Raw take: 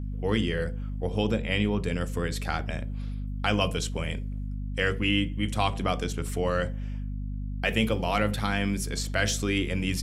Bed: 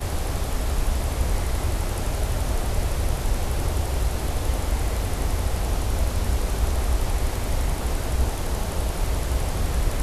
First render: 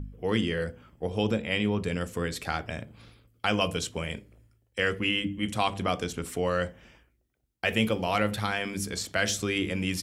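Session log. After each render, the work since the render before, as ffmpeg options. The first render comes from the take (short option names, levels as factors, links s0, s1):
-af "bandreject=f=50:t=h:w=4,bandreject=f=100:t=h:w=4,bandreject=f=150:t=h:w=4,bandreject=f=200:t=h:w=4,bandreject=f=250:t=h:w=4,bandreject=f=300:t=h:w=4"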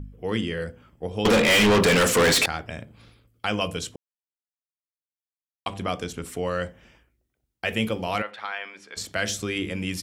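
-filter_complex "[0:a]asettb=1/sr,asplit=3[s0][s1][s2];[s0]atrim=end=1.254[s3];[s1]atrim=start=1.25:end=2.46,asetpts=PTS-STARTPTS,afade=t=in:d=0.004:c=qsin,afade=t=out:st=1.206:d=0.004:c=qsin,asplit=2[s4][s5];[s5]highpass=f=720:p=1,volume=63.1,asoftclip=type=tanh:threshold=0.299[s6];[s4][s6]amix=inputs=2:normalize=0,lowpass=f=7200:p=1,volume=0.501[s7];[s2]atrim=start=2.456[s8];[s3][s7]acrossfade=d=0.004:c1=hsin:c2=qsin[s9];[s9][s8]acrossfade=d=0.004:c1=qsin:c2=hsin,asplit=3[s10][s11][s12];[s10]afade=t=out:st=8.21:d=0.02[s13];[s11]highpass=770,lowpass=2700,afade=t=in:st=8.21:d=0.02,afade=t=out:st=8.96:d=0.02[s14];[s12]afade=t=in:st=8.96:d=0.02[s15];[s13][s14][s15]amix=inputs=3:normalize=0,asplit=3[s16][s17][s18];[s16]atrim=end=3.96,asetpts=PTS-STARTPTS,afade=t=out:st=3.956:d=0.004:c=hsin[s19];[s17]atrim=start=3.96:end=5.66,asetpts=PTS-STARTPTS,volume=0[s20];[s18]atrim=start=5.66,asetpts=PTS-STARTPTS,afade=t=in:d=0.004:c=hsin[s21];[s19][s20][s21]concat=n=3:v=0:a=1"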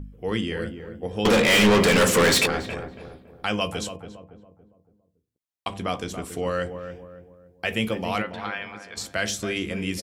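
-filter_complex "[0:a]asplit=2[s0][s1];[s1]adelay=15,volume=0.237[s2];[s0][s2]amix=inputs=2:normalize=0,asplit=2[s3][s4];[s4]adelay=281,lowpass=f=1000:p=1,volume=0.398,asplit=2[s5][s6];[s6]adelay=281,lowpass=f=1000:p=1,volume=0.45,asplit=2[s7][s8];[s8]adelay=281,lowpass=f=1000:p=1,volume=0.45,asplit=2[s9][s10];[s10]adelay=281,lowpass=f=1000:p=1,volume=0.45,asplit=2[s11][s12];[s12]adelay=281,lowpass=f=1000:p=1,volume=0.45[s13];[s5][s7][s9][s11][s13]amix=inputs=5:normalize=0[s14];[s3][s14]amix=inputs=2:normalize=0"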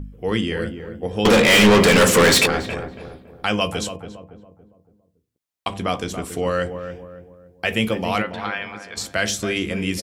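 -af "volume=1.68"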